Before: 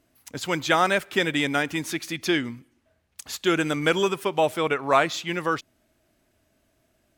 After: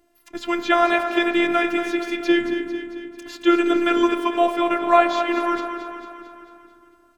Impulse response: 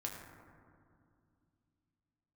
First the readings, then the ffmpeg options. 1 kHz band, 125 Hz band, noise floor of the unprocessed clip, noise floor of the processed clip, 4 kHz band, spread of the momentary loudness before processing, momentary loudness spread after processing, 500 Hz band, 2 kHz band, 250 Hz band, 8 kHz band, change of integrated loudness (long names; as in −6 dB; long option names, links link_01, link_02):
+5.0 dB, below −15 dB, −69 dBFS, −57 dBFS, −1.0 dB, 9 LU, 17 LU, +4.0 dB, +1.5 dB, +7.5 dB, can't be measured, +4.0 dB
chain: -filter_complex "[0:a]acrossover=split=4800[link_01][link_02];[link_02]acompressor=threshold=-49dB:ratio=4:attack=1:release=60[link_03];[link_01][link_03]amix=inputs=2:normalize=0,aecho=1:1:223|446|669|892|1115|1338|1561:0.316|0.18|0.103|0.0586|0.0334|0.019|0.0108,asplit=2[link_04][link_05];[1:a]atrim=start_sample=2205,lowpass=2700[link_06];[link_05][link_06]afir=irnorm=-1:irlink=0,volume=-3dB[link_07];[link_04][link_07]amix=inputs=2:normalize=0,afftfilt=real='hypot(re,im)*cos(PI*b)':imag='0':win_size=512:overlap=0.75,volume=3.5dB"